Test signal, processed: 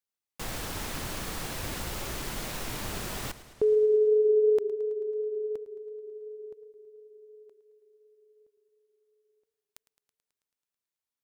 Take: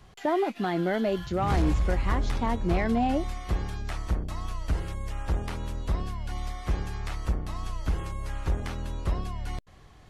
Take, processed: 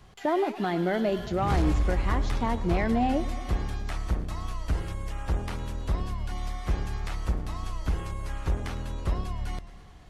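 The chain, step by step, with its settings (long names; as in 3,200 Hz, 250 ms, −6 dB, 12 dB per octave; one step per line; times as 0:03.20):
feedback echo with a swinging delay time 109 ms, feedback 71%, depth 93 cents, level −16.5 dB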